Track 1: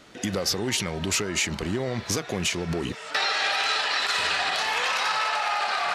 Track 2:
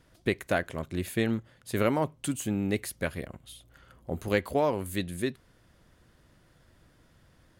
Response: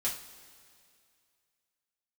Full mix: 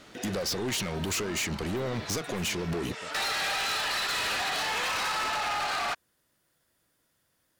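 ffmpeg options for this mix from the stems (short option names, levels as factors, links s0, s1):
-filter_complex "[0:a]volume=0.944[s0];[1:a]aemphasis=mode=production:type=bsi,acrossover=split=480[s1][s2];[s2]acompressor=threshold=0.00562:ratio=4[s3];[s1][s3]amix=inputs=2:normalize=0,volume=0.282[s4];[s0][s4]amix=inputs=2:normalize=0,volume=23.7,asoftclip=hard,volume=0.0422"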